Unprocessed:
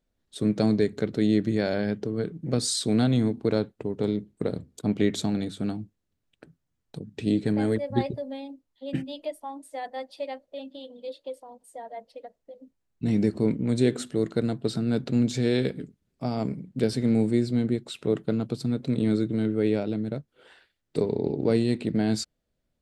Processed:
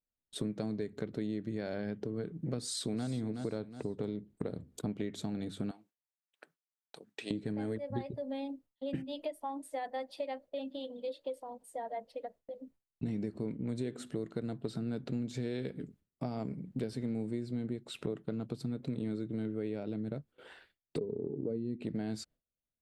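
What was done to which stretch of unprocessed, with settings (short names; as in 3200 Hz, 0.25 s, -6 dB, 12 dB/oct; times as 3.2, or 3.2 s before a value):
2.56–3.07 echo throw 0.37 s, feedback 30%, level -10 dB
5.71–7.31 HPF 820 Hz
20.98–21.82 spectral contrast raised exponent 1.6
whole clip: gate with hold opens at -52 dBFS; bell 5800 Hz -4.5 dB 1.8 oct; compressor 6:1, threshold -35 dBFS; gain +1 dB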